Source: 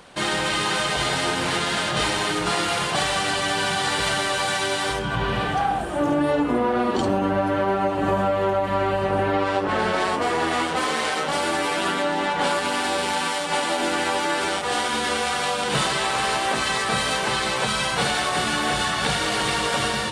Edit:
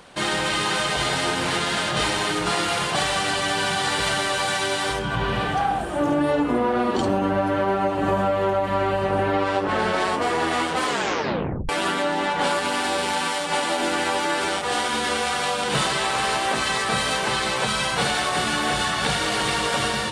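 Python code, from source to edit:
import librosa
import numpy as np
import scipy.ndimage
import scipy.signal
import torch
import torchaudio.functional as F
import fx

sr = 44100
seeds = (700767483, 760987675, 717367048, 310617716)

y = fx.edit(x, sr, fx.tape_stop(start_s=10.87, length_s=0.82), tone=tone)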